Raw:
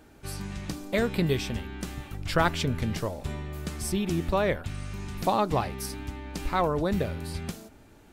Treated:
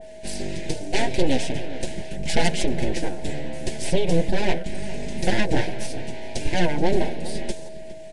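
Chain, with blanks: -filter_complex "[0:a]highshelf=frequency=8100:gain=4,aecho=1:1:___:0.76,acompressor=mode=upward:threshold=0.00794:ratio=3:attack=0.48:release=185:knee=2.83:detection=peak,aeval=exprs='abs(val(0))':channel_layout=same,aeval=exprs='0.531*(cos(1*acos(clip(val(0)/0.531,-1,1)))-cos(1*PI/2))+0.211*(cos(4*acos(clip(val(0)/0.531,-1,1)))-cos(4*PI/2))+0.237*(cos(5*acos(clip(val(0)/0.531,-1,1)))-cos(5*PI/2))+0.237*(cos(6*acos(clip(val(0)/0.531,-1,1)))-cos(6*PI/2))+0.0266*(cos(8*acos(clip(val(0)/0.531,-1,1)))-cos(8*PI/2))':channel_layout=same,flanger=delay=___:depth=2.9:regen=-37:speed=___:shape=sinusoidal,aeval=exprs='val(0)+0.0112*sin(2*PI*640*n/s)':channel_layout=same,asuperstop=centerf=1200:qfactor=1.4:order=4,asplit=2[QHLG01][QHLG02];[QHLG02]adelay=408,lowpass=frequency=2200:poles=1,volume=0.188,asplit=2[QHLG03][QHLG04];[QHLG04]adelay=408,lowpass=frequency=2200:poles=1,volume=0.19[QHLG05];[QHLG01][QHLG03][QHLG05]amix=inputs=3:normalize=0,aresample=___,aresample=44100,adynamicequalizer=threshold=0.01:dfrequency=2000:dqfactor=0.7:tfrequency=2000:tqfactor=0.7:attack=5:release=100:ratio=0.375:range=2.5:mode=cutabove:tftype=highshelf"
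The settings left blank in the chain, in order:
5.8, 4.7, 0.41, 22050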